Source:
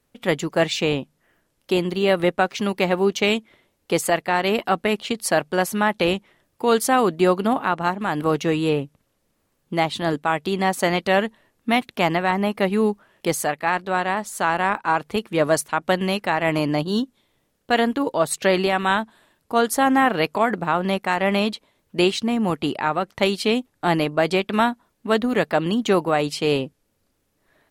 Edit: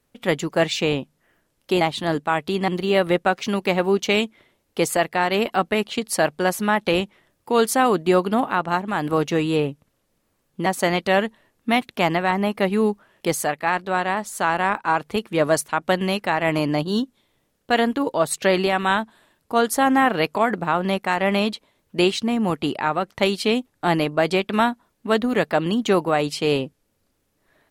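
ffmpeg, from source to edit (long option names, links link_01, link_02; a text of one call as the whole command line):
ffmpeg -i in.wav -filter_complex "[0:a]asplit=4[link_01][link_02][link_03][link_04];[link_01]atrim=end=1.812[link_05];[link_02]atrim=start=9.788:end=10.662[link_06];[link_03]atrim=start=1.808:end=9.792[link_07];[link_04]atrim=start=10.658[link_08];[link_05][link_06]acrossfade=duration=0.004:curve1=hsin:curve2=hsin[link_09];[link_09][link_07]acrossfade=duration=0.004:curve1=hsin:curve2=hsin[link_10];[link_10][link_08]acrossfade=duration=0.004:curve1=hsin:curve2=hsin" out.wav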